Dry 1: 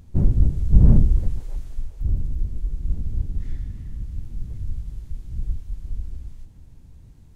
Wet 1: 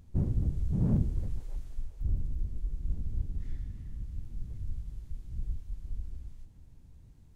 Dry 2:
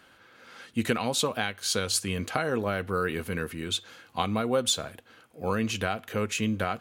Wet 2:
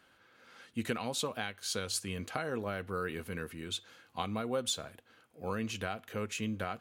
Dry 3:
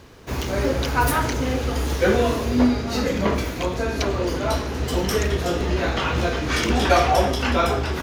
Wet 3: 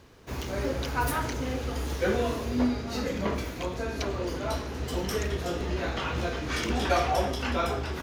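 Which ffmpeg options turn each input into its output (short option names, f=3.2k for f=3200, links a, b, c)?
-af "afftfilt=real='re*lt(hypot(re,im),2.51)':imag='im*lt(hypot(re,im),2.51)':win_size=1024:overlap=0.75,volume=-8dB"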